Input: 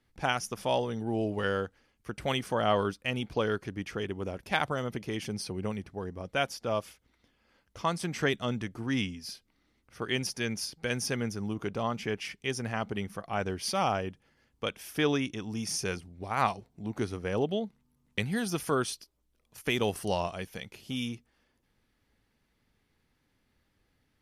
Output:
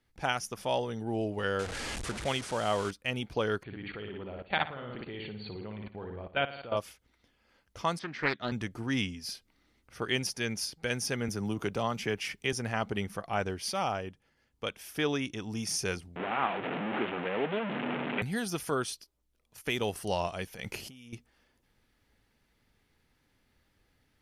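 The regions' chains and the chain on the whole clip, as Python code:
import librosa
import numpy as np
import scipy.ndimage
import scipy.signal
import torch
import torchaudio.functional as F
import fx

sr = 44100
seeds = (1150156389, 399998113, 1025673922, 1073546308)

y = fx.chain(x, sr, fx.delta_mod(bps=64000, step_db=-32.5),
    fx.lowpass(hz=10000.0, slope=24), at=(1.59, 2.91))
y = fx.chain(y, sr, fx.room_flutter(wall_m=9.8, rt60_s=0.61),
    fx.level_steps(step_db=14),
    fx.brickwall_lowpass(high_hz=4600.0), at=(3.63, 6.77))
y = fx.chain(y, sr, fx.cabinet(low_hz=150.0, low_slope=12, high_hz=4300.0, hz=(180.0, 450.0, 790.0, 1700.0, 2700.0), db=(-8, -4, -4, 6, -5)),
    fx.doppler_dist(depth_ms=0.37), at=(7.99, 8.52))
y = fx.chain(y, sr, fx.high_shelf(hz=11000.0, db=7.0),
    fx.band_squash(depth_pct=40), at=(11.28, 12.53))
y = fx.chain(y, sr, fx.delta_mod(bps=16000, step_db=-24.5),
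    fx.highpass(hz=180.0, slope=24), at=(16.16, 18.22))
y = fx.chain(y, sr, fx.peak_eq(hz=3600.0, db=-8.0, octaves=0.23),
    fx.over_compress(threshold_db=-47.0, ratio=-1.0), at=(20.54, 21.13))
y = fx.peak_eq(y, sr, hz=200.0, db=-2.5, octaves=1.9)
y = fx.notch(y, sr, hz=1100.0, q=26.0)
y = fx.rider(y, sr, range_db=3, speed_s=0.5)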